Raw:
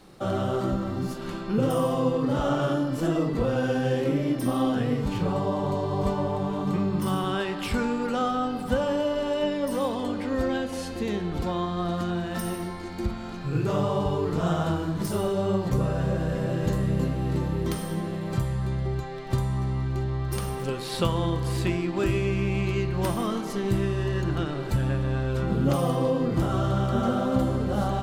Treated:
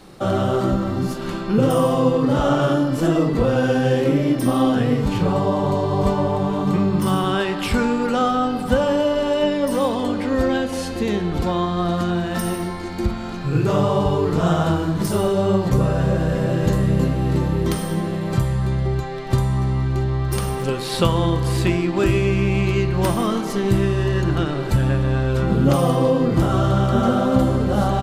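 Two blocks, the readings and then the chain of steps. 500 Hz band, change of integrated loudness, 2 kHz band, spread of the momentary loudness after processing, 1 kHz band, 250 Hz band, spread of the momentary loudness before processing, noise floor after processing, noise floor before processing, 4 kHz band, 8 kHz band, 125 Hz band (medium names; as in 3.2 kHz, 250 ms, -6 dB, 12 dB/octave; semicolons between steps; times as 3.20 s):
+7.0 dB, +7.0 dB, +7.0 dB, 5 LU, +7.0 dB, +7.0 dB, 5 LU, -27 dBFS, -34 dBFS, +7.0 dB, +7.0 dB, +7.0 dB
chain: resampled via 32 kHz; trim +7 dB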